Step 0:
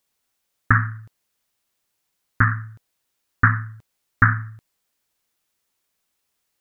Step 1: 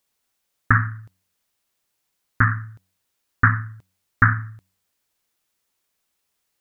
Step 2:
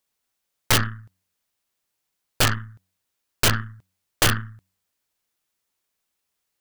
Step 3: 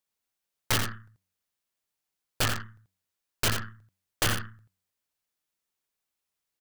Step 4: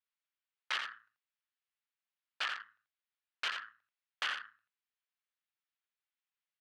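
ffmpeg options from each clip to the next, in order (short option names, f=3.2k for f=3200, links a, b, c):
-af "bandreject=f=93.56:t=h:w=4,bandreject=f=187.12:t=h:w=4,bandreject=f=280.68:t=h:w=4"
-af "aeval=exprs='(mod(3.35*val(0)+1,2)-1)/3.35':c=same,aeval=exprs='0.299*(cos(1*acos(clip(val(0)/0.299,-1,1)))-cos(1*PI/2))+0.0335*(cos(3*acos(clip(val(0)/0.299,-1,1)))-cos(3*PI/2))+0.0531*(cos(6*acos(clip(val(0)/0.299,-1,1)))-cos(6*PI/2))':c=same"
-af "aecho=1:1:85:0.422,volume=-7.5dB"
-filter_complex "[0:a]asplit=2[a][b];[b]acrusher=samples=33:mix=1:aa=0.000001,volume=-12dB[c];[a][c]amix=inputs=2:normalize=0,asuperpass=centerf=2000:order=4:qfactor=0.78,volume=-5dB"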